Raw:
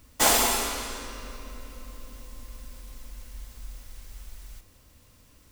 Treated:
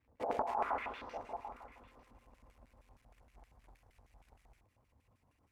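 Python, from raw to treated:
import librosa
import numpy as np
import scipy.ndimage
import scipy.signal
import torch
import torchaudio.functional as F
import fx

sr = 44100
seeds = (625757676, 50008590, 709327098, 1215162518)

p1 = fx.envelope_sharpen(x, sr, power=1.5)
p2 = fx.filter_sweep_lowpass(p1, sr, from_hz=490.0, to_hz=12000.0, start_s=0.34, end_s=1.38, q=2.2)
p3 = fx.quant_float(p2, sr, bits=2)
p4 = fx.peak_eq(p3, sr, hz=73.0, db=15.0, octaves=2.5)
p5 = fx.filter_lfo_bandpass(p4, sr, shape='square', hz=6.4, low_hz=820.0, high_hz=2300.0, q=3.0)
p6 = fx.peak_eq(p5, sr, hz=3200.0, db=-9.5, octaves=1.9)
p7 = p6 + fx.echo_single(p6, sr, ms=899, db=-19.0, dry=0)
p8 = fx.over_compress(p7, sr, threshold_db=-34.0, ratio=-1.0)
y = fx.doppler_dist(p8, sr, depth_ms=0.21)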